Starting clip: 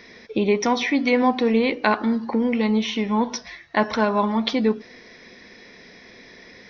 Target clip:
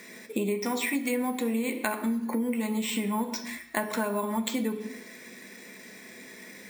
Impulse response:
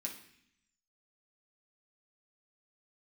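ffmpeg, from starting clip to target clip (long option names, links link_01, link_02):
-filter_complex "[0:a]acrusher=samples=4:mix=1:aa=0.000001,asplit=2[link_01][link_02];[1:a]atrim=start_sample=2205,afade=type=out:start_time=0.42:duration=0.01,atrim=end_sample=18963[link_03];[link_02][link_03]afir=irnorm=-1:irlink=0,volume=1.5dB[link_04];[link_01][link_04]amix=inputs=2:normalize=0,acompressor=threshold=-21dB:ratio=6,volume=-5dB"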